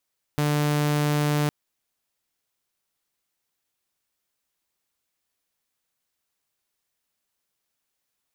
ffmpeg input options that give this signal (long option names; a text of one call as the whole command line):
ffmpeg -f lavfi -i "aevalsrc='0.126*(2*mod(148*t,1)-1)':duration=1.11:sample_rate=44100" out.wav